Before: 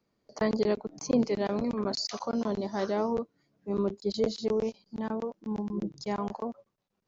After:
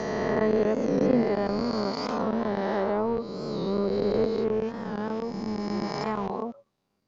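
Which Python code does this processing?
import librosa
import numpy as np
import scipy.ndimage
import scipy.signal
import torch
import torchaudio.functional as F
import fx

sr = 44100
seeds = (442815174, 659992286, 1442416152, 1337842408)

y = fx.spec_swells(x, sr, rise_s=2.91)
y = fx.env_lowpass_down(y, sr, base_hz=2200.0, full_db=-21.5)
y = fx.record_warp(y, sr, rpm=45.0, depth_cents=100.0)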